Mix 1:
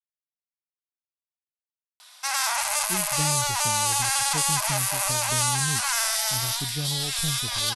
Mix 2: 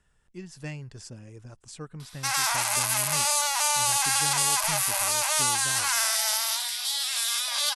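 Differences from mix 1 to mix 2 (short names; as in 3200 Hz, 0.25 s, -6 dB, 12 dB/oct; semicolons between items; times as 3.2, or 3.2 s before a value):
speech: entry -2.55 s; master: add low shelf 250 Hz -11 dB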